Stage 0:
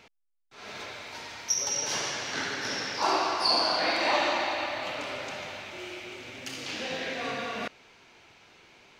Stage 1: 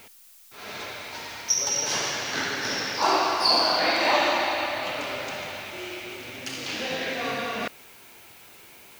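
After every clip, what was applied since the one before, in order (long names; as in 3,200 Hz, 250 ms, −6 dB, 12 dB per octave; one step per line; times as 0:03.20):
background noise blue −56 dBFS
level +4 dB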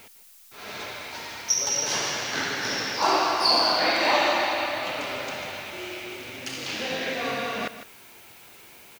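single-tap delay 154 ms −12.5 dB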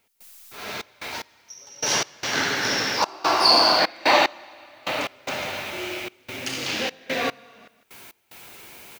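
gate pattern ".xxx.x...x.xxxx" 74 BPM −24 dB
level +4.5 dB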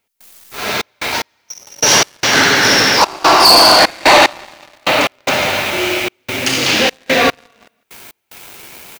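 leveller curve on the samples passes 3
level +3 dB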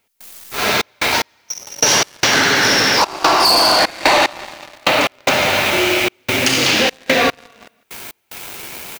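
downward compressor 6 to 1, threshold −16 dBFS, peak gain reduction 10.5 dB
level +4.5 dB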